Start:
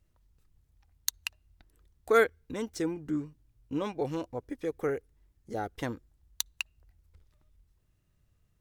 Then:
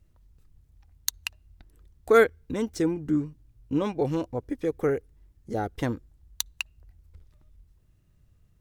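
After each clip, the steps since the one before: low shelf 410 Hz +6.5 dB; gain +2.5 dB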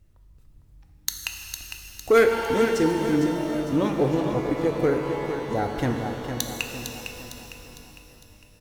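in parallel at -8.5 dB: wavefolder -18 dBFS; on the sum: feedback echo 0.455 s, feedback 46%, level -8 dB; shimmer reverb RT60 3 s, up +12 st, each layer -8 dB, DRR 4 dB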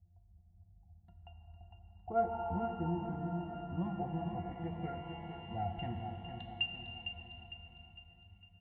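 fixed phaser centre 1500 Hz, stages 6; octave resonator F, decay 0.11 s; low-pass sweep 670 Hz -> 2400 Hz, 1.32–5.31; gain +1 dB

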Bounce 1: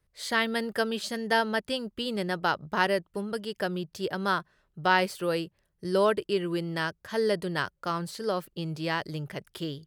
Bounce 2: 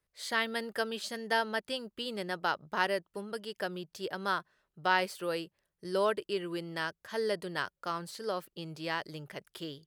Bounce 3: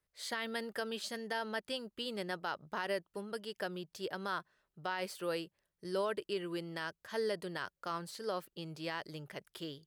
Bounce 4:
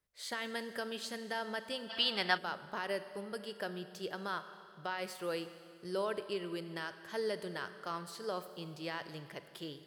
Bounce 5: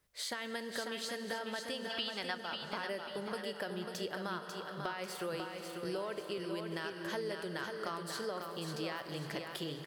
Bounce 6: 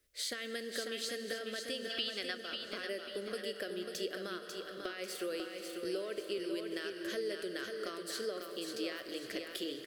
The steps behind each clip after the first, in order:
low shelf 200 Hz -11 dB; gain -4 dB
limiter -23.5 dBFS, peak gain reduction 10.5 dB; gain -2.5 dB
Schroeder reverb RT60 2.3 s, combs from 30 ms, DRR 10.5 dB; spectral gain 1.9–2.38, 660–5900 Hz +12 dB; gain -1 dB
compressor 5:1, threshold -47 dBFS, peak gain reduction 19.5 dB; feedback echo 0.544 s, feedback 41%, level -5.5 dB; gain +9 dB
fixed phaser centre 370 Hz, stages 4; gain +2.5 dB

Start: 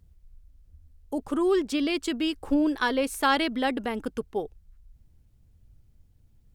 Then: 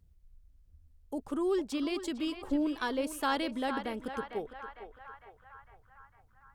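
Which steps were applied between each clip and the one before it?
dynamic EQ 2100 Hz, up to -4 dB, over -41 dBFS, Q 0.9; narrowing echo 0.454 s, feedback 68%, band-pass 1300 Hz, level -6.5 dB; gain -6.5 dB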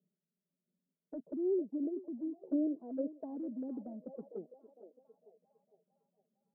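Chebyshev band-pass 170–640 Hz, order 4; envelope flanger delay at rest 5.1 ms, full sweep at -28 dBFS; gain -1 dB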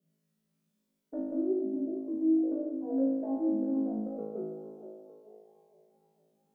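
limiter -34 dBFS, peak gain reduction 10.5 dB; on a send: flutter echo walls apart 3.2 m, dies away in 1.2 s; on the sum: gain +3 dB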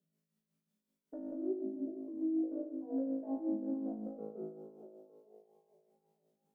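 tremolo 5.4 Hz, depth 55%; gain -4.5 dB

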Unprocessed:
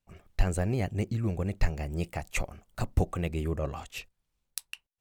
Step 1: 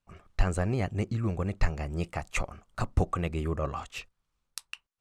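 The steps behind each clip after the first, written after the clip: LPF 8900 Hz 12 dB/oct; bell 1200 Hz +8 dB 0.63 oct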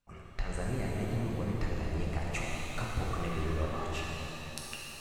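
compressor 2:1, threshold -42 dBFS, peak gain reduction 14 dB; shimmer reverb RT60 3.5 s, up +7 st, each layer -8 dB, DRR -4 dB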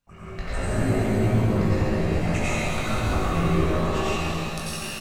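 doubler 19 ms -5.5 dB; plate-style reverb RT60 1.4 s, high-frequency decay 0.55×, pre-delay 80 ms, DRR -8 dB; gain +1.5 dB

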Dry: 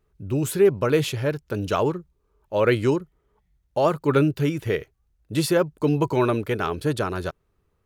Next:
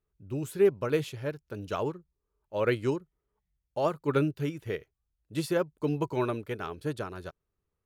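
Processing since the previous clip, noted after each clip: upward expander 1.5:1, over -31 dBFS; gain -5 dB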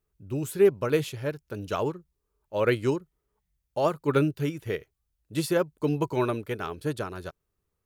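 high shelf 7100 Hz +5 dB; gain +3 dB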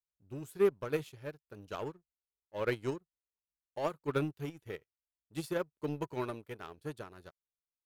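power-law curve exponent 1.4; gain -6.5 dB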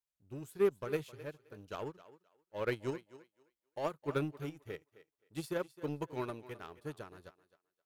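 thinning echo 0.262 s, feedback 20%, high-pass 260 Hz, level -16 dB; gain -2 dB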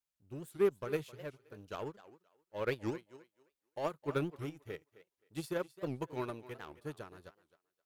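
record warp 78 rpm, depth 250 cents

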